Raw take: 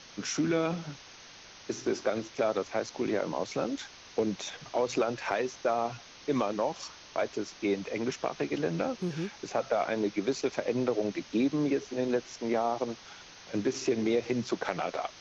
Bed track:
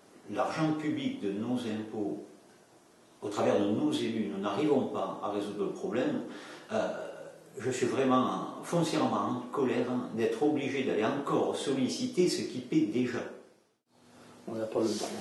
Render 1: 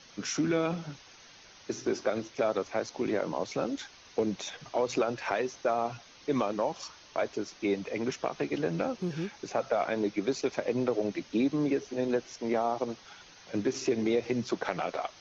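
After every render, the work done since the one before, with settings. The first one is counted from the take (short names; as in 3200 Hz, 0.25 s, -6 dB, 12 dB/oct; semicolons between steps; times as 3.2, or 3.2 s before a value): denoiser 6 dB, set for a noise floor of -51 dBFS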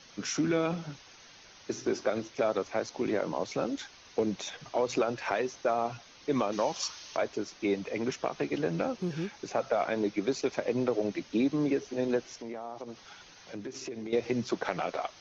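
6.52–7.17 high shelf 2400 Hz +11 dB; 12.26–14.13 compressor 3:1, threshold -39 dBFS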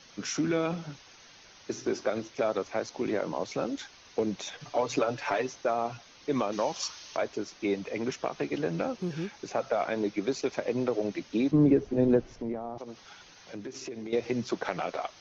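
4.6–5.54 comb 6.9 ms; 11.51–12.78 tilt -4 dB/oct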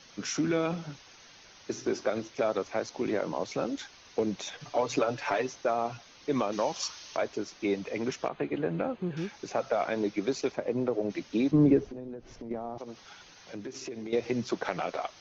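8.28–9.17 running mean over 8 samples; 10.52–11.1 high shelf 2000 Hz -11 dB; 11.86–12.51 compressor 10:1, threshold -37 dBFS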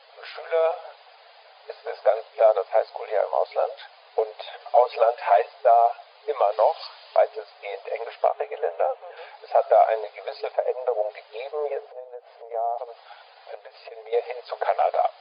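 FFT band-pass 430–5000 Hz; bell 700 Hz +15 dB 0.83 oct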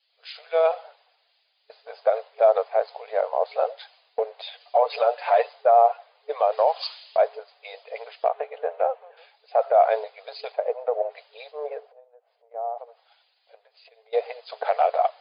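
limiter -11.5 dBFS, peak gain reduction 6.5 dB; three-band expander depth 100%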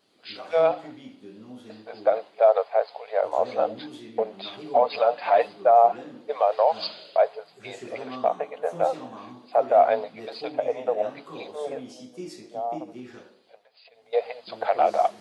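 add bed track -11 dB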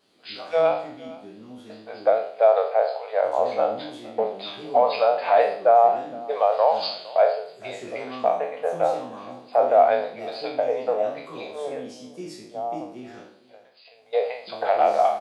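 spectral trails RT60 0.54 s; echo 0.461 s -21 dB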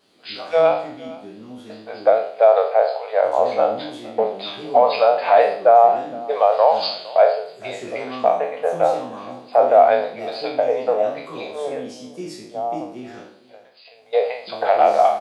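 gain +4.5 dB; limiter -3 dBFS, peak gain reduction 1.5 dB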